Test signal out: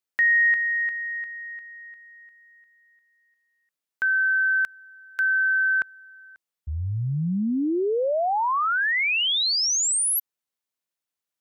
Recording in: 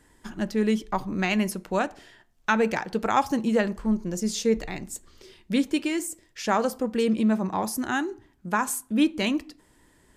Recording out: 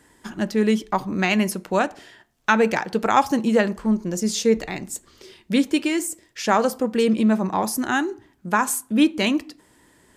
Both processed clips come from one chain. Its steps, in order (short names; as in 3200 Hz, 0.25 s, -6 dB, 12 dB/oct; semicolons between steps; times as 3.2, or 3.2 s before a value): HPF 120 Hz 6 dB/oct; gain +5 dB